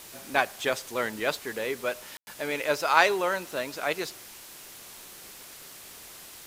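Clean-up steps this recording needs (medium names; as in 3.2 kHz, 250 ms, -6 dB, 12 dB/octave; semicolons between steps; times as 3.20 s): room tone fill 2.17–2.27 s; noise reduction 28 dB, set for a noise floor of -47 dBFS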